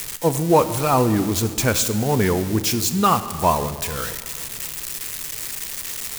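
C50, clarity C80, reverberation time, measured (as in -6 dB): 12.5 dB, 13.5 dB, 1.9 s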